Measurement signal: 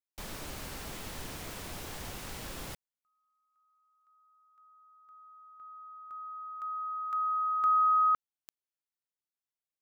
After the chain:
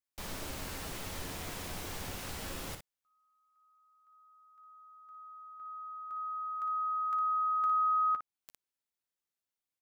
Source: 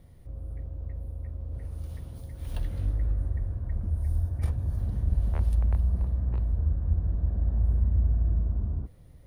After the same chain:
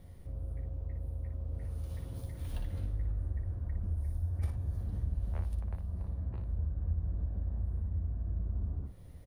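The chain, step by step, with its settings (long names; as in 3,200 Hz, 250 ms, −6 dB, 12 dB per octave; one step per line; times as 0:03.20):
downward compressor 2.5 to 1, threshold −36 dBFS
ambience of single reflections 11 ms −8.5 dB, 58 ms −7 dB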